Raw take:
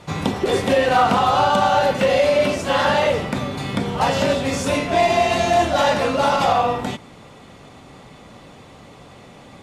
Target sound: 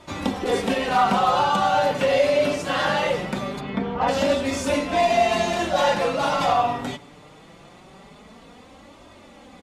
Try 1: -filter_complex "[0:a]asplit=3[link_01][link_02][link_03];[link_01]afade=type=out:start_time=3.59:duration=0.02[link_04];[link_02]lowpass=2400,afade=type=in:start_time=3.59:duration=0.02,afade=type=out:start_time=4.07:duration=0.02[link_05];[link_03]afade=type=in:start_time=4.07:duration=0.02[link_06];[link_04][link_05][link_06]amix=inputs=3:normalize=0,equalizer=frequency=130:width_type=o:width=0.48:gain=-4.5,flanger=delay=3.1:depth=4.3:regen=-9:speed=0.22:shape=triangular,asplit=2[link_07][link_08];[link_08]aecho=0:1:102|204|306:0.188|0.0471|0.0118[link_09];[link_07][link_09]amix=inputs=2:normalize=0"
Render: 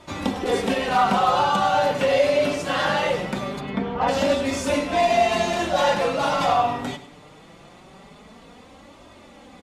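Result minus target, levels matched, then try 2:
echo-to-direct +10 dB
-filter_complex "[0:a]asplit=3[link_01][link_02][link_03];[link_01]afade=type=out:start_time=3.59:duration=0.02[link_04];[link_02]lowpass=2400,afade=type=in:start_time=3.59:duration=0.02,afade=type=out:start_time=4.07:duration=0.02[link_05];[link_03]afade=type=in:start_time=4.07:duration=0.02[link_06];[link_04][link_05][link_06]amix=inputs=3:normalize=0,equalizer=frequency=130:width_type=o:width=0.48:gain=-4.5,flanger=delay=3.1:depth=4.3:regen=-9:speed=0.22:shape=triangular,asplit=2[link_07][link_08];[link_08]aecho=0:1:102|204:0.0596|0.0149[link_09];[link_07][link_09]amix=inputs=2:normalize=0"

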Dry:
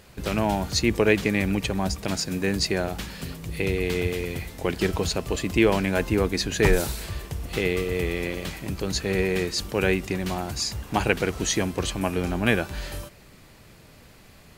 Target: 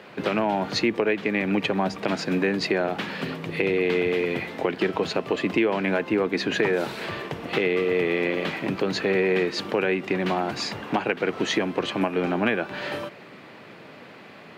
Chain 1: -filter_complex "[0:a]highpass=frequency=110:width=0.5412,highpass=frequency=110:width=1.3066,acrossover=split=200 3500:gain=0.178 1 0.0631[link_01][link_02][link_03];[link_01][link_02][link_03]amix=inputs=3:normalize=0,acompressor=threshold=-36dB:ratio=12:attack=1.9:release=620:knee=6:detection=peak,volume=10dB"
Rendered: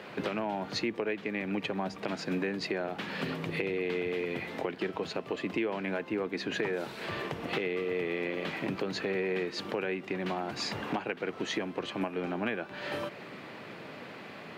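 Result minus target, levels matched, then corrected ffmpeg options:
downward compressor: peak gain reduction +9.5 dB
-filter_complex "[0:a]highpass=frequency=110:width=0.5412,highpass=frequency=110:width=1.3066,acrossover=split=200 3500:gain=0.178 1 0.0631[link_01][link_02][link_03];[link_01][link_02][link_03]amix=inputs=3:normalize=0,acompressor=threshold=-25.5dB:ratio=12:attack=1.9:release=620:knee=6:detection=peak,volume=10dB"

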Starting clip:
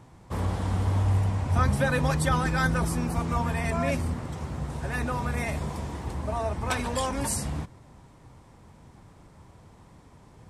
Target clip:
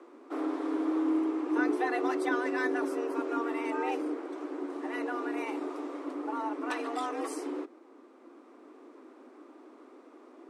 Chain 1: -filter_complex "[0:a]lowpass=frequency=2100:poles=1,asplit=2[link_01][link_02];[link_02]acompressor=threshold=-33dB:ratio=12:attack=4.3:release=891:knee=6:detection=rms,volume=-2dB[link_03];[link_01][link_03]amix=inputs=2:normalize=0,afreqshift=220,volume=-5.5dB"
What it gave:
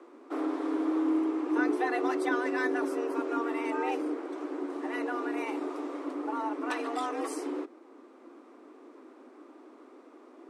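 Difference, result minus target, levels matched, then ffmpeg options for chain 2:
downward compressor: peak gain reduction −8.5 dB
-filter_complex "[0:a]lowpass=frequency=2100:poles=1,asplit=2[link_01][link_02];[link_02]acompressor=threshold=-42.5dB:ratio=12:attack=4.3:release=891:knee=6:detection=rms,volume=-2dB[link_03];[link_01][link_03]amix=inputs=2:normalize=0,afreqshift=220,volume=-5.5dB"

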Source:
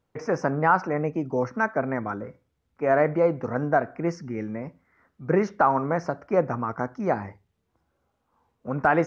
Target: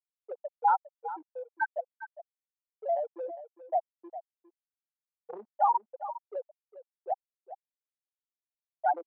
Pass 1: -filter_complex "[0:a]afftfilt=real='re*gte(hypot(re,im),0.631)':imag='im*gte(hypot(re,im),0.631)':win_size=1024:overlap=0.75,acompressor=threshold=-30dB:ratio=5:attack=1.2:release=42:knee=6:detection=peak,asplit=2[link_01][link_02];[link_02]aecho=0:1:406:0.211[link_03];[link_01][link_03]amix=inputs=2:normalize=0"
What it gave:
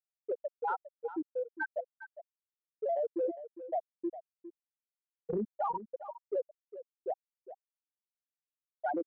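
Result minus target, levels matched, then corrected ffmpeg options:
1,000 Hz band −4.0 dB
-filter_complex "[0:a]afftfilt=real='re*gte(hypot(re,im),0.631)':imag='im*gte(hypot(re,im),0.631)':win_size=1024:overlap=0.75,acompressor=threshold=-30dB:ratio=5:attack=1.2:release=42:knee=6:detection=peak,highpass=frequency=830:width_type=q:width=3.6,asplit=2[link_01][link_02];[link_02]aecho=0:1:406:0.211[link_03];[link_01][link_03]amix=inputs=2:normalize=0"

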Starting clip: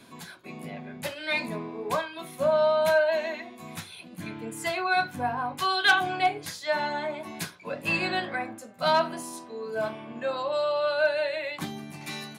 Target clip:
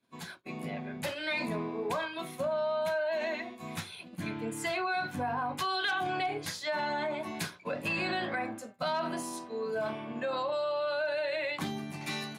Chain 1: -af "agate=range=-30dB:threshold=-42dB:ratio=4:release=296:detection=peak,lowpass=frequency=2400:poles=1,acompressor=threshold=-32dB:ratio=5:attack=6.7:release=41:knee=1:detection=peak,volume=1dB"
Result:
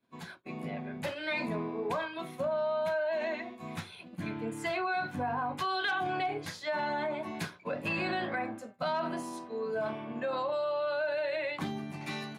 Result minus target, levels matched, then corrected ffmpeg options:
8,000 Hz band −7.0 dB
-af "agate=range=-30dB:threshold=-42dB:ratio=4:release=296:detection=peak,lowpass=frequency=7600:poles=1,acompressor=threshold=-32dB:ratio=5:attack=6.7:release=41:knee=1:detection=peak,volume=1dB"

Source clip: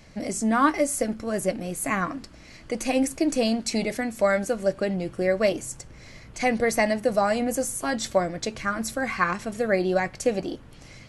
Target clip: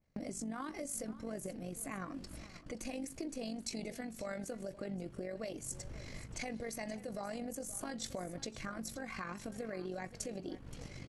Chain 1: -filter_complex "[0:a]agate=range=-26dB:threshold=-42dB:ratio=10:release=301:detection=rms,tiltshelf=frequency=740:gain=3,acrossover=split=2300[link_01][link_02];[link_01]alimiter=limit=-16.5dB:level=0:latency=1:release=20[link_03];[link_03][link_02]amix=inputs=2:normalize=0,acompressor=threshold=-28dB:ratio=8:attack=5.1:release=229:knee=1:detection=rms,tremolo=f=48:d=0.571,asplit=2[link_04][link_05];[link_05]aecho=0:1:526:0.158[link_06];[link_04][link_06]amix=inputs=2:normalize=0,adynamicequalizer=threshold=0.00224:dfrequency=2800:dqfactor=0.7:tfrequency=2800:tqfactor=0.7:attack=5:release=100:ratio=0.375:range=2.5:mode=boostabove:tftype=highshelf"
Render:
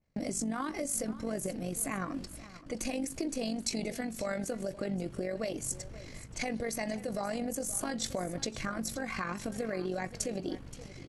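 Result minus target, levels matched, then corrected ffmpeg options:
downward compressor: peak gain reduction −7 dB
-filter_complex "[0:a]agate=range=-26dB:threshold=-42dB:ratio=10:release=301:detection=rms,tiltshelf=frequency=740:gain=3,acrossover=split=2300[link_01][link_02];[link_01]alimiter=limit=-16.5dB:level=0:latency=1:release=20[link_03];[link_03][link_02]amix=inputs=2:normalize=0,acompressor=threshold=-36dB:ratio=8:attack=5.1:release=229:knee=1:detection=rms,tremolo=f=48:d=0.571,asplit=2[link_04][link_05];[link_05]aecho=0:1:526:0.158[link_06];[link_04][link_06]amix=inputs=2:normalize=0,adynamicequalizer=threshold=0.00224:dfrequency=2800:dqfactor=0.7:tfrequency=2800:tqfactor=0.7:attack=5:release=100:ratio=0.375:range=2.5:mode=boostabove:tftype=highshelf"

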